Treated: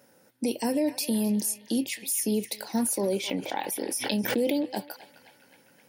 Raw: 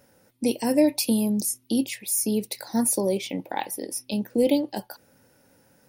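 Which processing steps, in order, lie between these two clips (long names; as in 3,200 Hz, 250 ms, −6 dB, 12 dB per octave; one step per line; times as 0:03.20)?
high-pass filter 160 Hz 12 dB per octave
brickwall limiter −18.5 dBFS, peak gain reduction 9 dB
feedback echo with a band-pass in the loop 261 ms, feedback 75%, band-pass 2,000 Hz, level −12 dB
0:03.14–0:04.54: background raised ahead of every attack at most 53 dB per second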